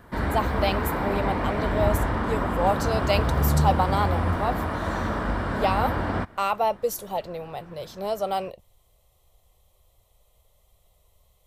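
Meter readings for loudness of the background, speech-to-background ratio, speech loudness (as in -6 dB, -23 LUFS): -26.0 LUFS, -2.5 dB, -28.5 LUFS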